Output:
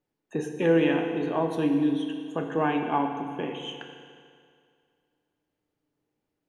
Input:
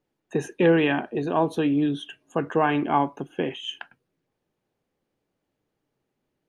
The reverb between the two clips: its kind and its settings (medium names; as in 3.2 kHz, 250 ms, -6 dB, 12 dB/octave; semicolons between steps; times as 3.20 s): FDN reverb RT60 2.2 s, low-frequency decay 0.9×, high-frequency decay 0.9×, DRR 3.5 dB; trim -5.5 dB